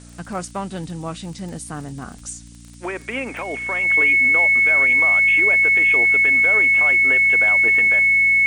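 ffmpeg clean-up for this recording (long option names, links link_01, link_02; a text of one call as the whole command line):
ffmpeg -i in.wav -af "adeclick=threshold=4,bandreject=frequency=58.6:width_type=h:width=4,bandreject=frequency=117.2:width_type=h:width=4,bandreject=frequency=175.8:width_type=h:width=4,bandreject=frequency=234.4:width_type=h:width=4,bandreject=frequency=293:width_type=h:width=4,bandreject=frequency=2200:width=30,afftdn=noise_reduction=25:noise_floor=-40" out.wav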